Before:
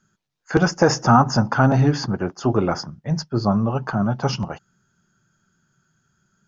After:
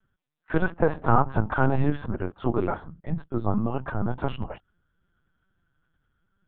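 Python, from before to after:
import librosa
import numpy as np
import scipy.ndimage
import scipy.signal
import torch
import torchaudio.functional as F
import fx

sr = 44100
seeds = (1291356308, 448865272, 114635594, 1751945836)

y = fx.high_shelf(x, sr, hz=2100.0, db=-7.0, at=(0.69, 1.09))
y = fx.lpc_vocoder(y, sr, seeds[0], excitation='pitch_kept', order=10)
y = y * 10.0 ** (-5.0 / 20.0)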